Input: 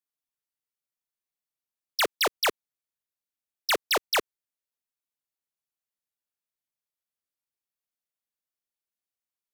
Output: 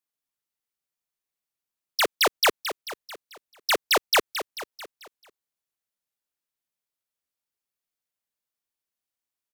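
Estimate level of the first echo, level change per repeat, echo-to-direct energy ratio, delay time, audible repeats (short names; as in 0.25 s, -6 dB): -13.5 dB, -5.5 dB, -12.0 dB, 0.22 s, 5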